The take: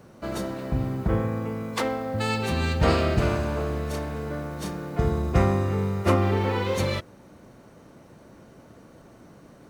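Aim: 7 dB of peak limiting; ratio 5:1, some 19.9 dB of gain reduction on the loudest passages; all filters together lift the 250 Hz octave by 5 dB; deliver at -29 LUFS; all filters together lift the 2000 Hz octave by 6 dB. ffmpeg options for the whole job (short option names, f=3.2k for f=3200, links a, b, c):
-af "equalizer=f=250:t=o:g=6.5,equalizer=f=2k:t=o:g=7.5,acompressor=threshold=-37dB:ratio=5,volume=12dB,alimiter=limit=-19dB:level=0:latency=1"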